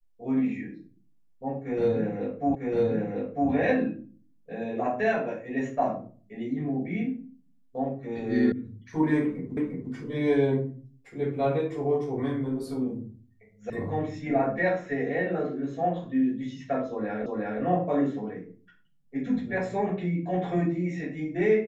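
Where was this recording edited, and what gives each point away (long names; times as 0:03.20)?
0:02.55: the same again, the last 0.95 s
0:08.52: cut off before it has died away
0:09.57: the same again, the last 0.35 s
0:13.70: cut off before it has died away
0:17.26: the same again, the last 0.36 s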